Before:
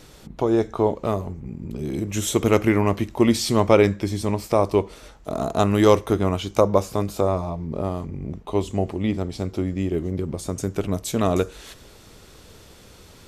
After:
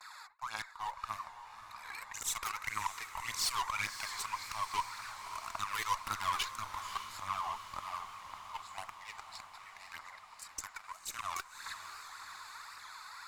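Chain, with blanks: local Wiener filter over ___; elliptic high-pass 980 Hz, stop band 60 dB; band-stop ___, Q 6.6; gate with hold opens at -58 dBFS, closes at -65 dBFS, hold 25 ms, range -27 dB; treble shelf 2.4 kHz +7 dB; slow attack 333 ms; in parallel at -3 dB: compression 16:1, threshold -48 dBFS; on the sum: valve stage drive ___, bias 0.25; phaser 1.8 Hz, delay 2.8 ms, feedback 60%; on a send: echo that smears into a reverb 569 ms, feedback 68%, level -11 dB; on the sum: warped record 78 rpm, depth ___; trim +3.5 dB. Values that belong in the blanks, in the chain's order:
15 samples, 3.2 kHz, 34 dB, 100 cents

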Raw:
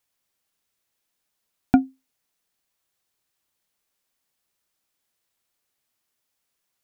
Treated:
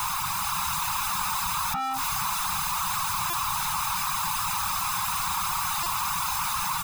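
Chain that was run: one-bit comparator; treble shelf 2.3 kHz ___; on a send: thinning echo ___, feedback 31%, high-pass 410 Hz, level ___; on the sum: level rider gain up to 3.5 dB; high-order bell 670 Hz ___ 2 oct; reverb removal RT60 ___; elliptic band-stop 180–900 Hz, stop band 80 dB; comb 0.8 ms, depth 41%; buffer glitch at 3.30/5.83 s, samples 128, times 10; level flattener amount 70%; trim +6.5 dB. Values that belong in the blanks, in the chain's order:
-7 dB, 145 ms, -17 dB, +11.5 dB, 0.57 s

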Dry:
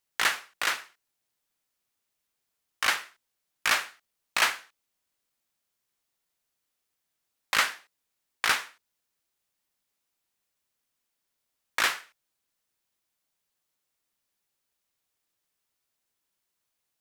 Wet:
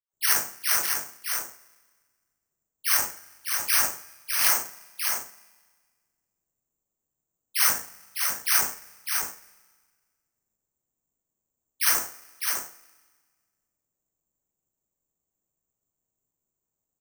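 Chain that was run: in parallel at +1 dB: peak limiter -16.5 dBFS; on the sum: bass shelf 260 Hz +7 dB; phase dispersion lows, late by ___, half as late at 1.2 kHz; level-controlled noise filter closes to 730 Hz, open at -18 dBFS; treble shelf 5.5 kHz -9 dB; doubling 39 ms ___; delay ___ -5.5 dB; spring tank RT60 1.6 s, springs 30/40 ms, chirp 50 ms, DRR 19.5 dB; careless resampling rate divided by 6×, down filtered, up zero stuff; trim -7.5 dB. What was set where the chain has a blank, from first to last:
137 ms, -11 dB, 604 ms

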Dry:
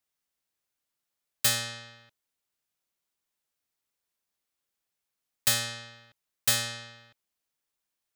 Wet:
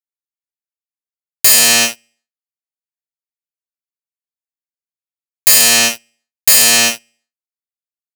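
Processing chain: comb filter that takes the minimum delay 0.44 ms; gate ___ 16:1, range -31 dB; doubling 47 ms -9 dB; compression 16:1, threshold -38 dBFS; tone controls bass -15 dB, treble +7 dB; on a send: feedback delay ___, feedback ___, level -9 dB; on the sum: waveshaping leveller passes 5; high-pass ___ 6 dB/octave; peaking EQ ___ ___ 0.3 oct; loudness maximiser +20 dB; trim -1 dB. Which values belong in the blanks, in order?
-48 dBFS, 69 ms, 46%, 41 Hz, 3.7 kHz, -3 dB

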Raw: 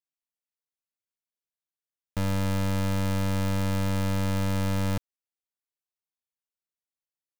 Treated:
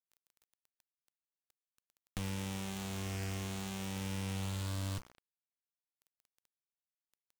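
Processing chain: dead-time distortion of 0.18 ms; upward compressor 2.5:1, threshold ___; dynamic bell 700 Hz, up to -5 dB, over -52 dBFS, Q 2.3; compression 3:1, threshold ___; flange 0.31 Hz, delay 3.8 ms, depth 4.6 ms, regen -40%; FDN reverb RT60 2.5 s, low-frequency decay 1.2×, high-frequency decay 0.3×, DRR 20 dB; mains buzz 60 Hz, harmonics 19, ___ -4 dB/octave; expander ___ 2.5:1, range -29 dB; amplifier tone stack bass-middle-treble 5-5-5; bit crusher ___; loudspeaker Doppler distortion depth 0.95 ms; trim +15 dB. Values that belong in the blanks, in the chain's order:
-41 dBFS, -34 dBFS, -59 dBFS, -53 dBFS, 11-bit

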